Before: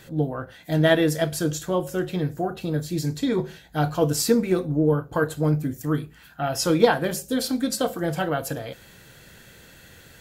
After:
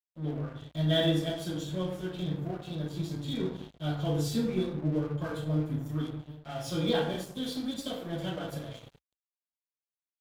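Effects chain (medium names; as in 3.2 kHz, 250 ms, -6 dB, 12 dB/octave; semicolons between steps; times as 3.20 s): expander -42 dBFS; peaking EQ 3.4 kHz +14.5 dB 0.41 oct; reverberation RT60 0.70 s, pre-delay 48 ms; crossover distortion -45.5 dBFS; peaking EQ 62 Hz +7 dB 0.8 oct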